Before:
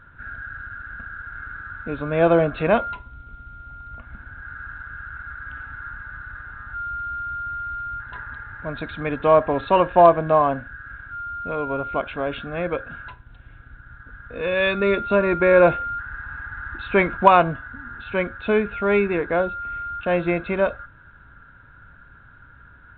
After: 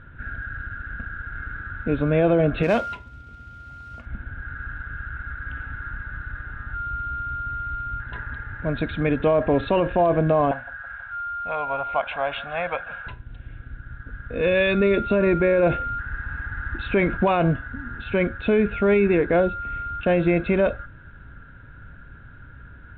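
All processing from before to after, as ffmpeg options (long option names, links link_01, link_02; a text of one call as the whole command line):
ffmpeg -i in.wav -filter_complex "[0:a]asettb=1/sr,asplit=3[link_01][link_02][link_03];[link_01]atrim=end=2.634[link_04];[link_02]atrim=start=2.63:end=4.06,asetpts=PTS-STARTPTS,afade=type=in:duration=0.004:curve=qsin,afade=type=out:start_time=1.426:duration=0.004:curve=qsin,highpass=62,lowshelf=frequency=490:gain=-5.5,acrusher=bits=4:mode=log:mix=0:aa=0.000001[link_05];[link_03]atrim=start=4.056[link_06];[link_04][link_05]acrossfade=duration=0.004:curve1=hsin:curve2=qsin[link_07];[link_07][link_06]acrossfade=duration=0.004:curve1=qsin:curve2=hsin,asettb=1/sr,asplit=3[link_08][link_09][link_10];[link_08]atrim=end=10.514[link_11];[link_09]atrim=start=10.51:end=13.07,asetpts=PTS-STARTPTS,afade=type=in:duration=0.004:curve=qsin,afade=type=out:start_time=2.556:duration=0.004:curve=qsin,lowshelf=frequency=540:width_type=q:width=3:gain=-14,aecho=1:1:163|326|489|652:0.106|0.053|0.0265|0.0132,atrim=end_sample=112896[link_12];[link_10]atrim=start=13.066[link_13];[link_11][link_12]acrossfade=duration=0.004:curve1=hsin:curve2=qsin[link_14];[link_14][link_13]acrossfade=duration=0.004:curve1=qsin:curve2=hsin,lowpass=3100,equalizer=frequency=1100:width=1:gain=-10.5,alimiter=limit=-18.5dB:level=0:latency=1:release=39,volume=7.5dB" out.wav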